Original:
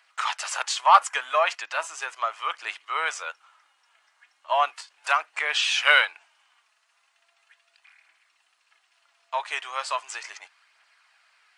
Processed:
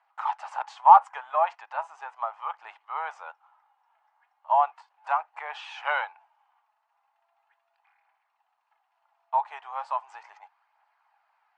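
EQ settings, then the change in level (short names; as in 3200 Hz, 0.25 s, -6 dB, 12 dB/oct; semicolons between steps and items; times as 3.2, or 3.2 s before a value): band-pass 840 Hz, Q 6.9; +8.5 dB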